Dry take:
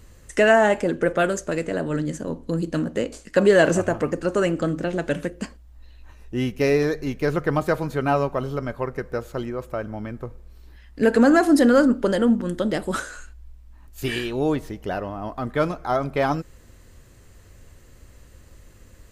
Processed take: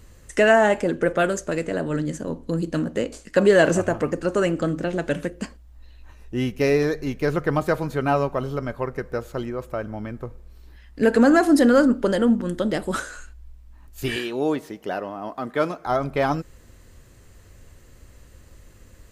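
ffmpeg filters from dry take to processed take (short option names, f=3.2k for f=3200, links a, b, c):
-filter_complex "[0:a]asettb=1/sr,asplit=3[a][b][c];[a]atrim=end=14.164[d];[b]atrim=start=14.16:end=15.86,asetpts=PTS-STARTPTS,afade=t=in:d=0.004:c=qsin,afade=t=out:st=1.696:d=0.004:c=qsin,highpass=210[e];[c]atrim=start=15.856[f];[d][e]acrossfade=d=0.004:c1=hsin:c2=qsin[g];[g][f]acrossfade=d=0.004:c1=qsin:c2=hsin"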